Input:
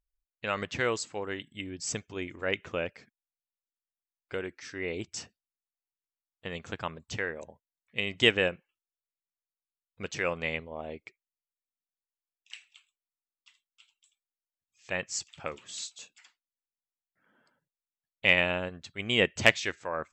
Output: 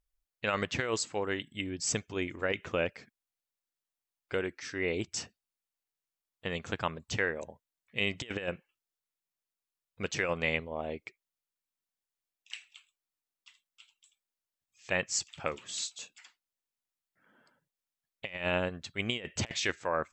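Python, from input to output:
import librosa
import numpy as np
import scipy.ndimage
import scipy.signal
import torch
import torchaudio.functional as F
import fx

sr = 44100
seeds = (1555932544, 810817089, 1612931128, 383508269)

y = fx.over_compress(x, sr, threshold_db=-30.0, ratio=-0.5)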